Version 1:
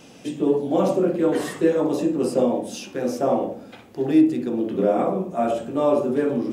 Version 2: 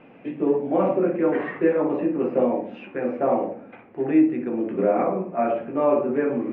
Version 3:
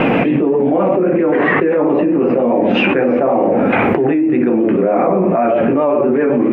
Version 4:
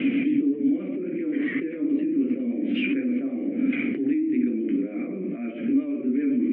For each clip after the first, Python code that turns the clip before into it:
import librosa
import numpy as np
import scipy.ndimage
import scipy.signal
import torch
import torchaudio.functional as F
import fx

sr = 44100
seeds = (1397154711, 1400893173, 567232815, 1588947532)

y1 = fx.dynamic_eq(x, sr, hz=2000.0, q=1.2, threshold_db=-44.0, ratio=4.0, max_db=4)
y1 = scipy.signal.sosfilt(scipy.signal.cheby1(4, 1.0, 2400.0, 'lowpass', fs=sr, output='sos'), y1)
y1 = fx.peak_eq(y1, sr, hz=61.0, db=-10.0, octaves=1.8)
y2 = fx.vibrato(y1, sr, rate_hz=7.6, depth_cents=44.0)
y2 = fx.env_flatten(y2, sr, amount_pct=100)
y3 = fx.vowel_filter(y2, sr, vowel='i')
y3 = y3 * 10.0 ** (-2.0 / 20.0)